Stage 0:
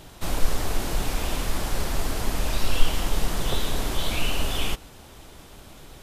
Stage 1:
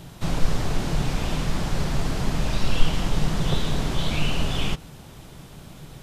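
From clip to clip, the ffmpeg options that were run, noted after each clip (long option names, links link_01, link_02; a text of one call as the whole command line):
ffmpeg -i in.wav -filter_complex "[0:a]acrossover=split=7700[link_01][link_02];[link_02]acompressor=threshold=-54dB:ratio=4:attack=1:release=60[link_03];[link_01][link_03]amix=inputs=2:normalize=0,equalizer=frequency=150:width=1.6:gain=12.5" out.wav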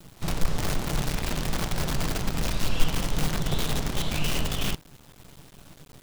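ffmpeg -i in.wav -af "acrusher=bits=5:dc=4:mix=0:aa=0.000001,volume=-4dB" out.wav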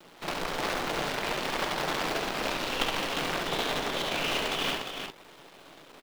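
ffmpeg -i in.wav -filter_complex "[0:a]acrusher=bits=3:mode=log:mix=0:aa=0.000001,acrossover=split=290 4300:gain=0.0708 1 0.224[link_01][link_02][link_03];[link_01][link_02][link_03]amix=inputs=3:normalize=0,aecho=1:1:69|170|312|354:0.562|0.224|0.237|0.473,volume=1.5dB" out.wav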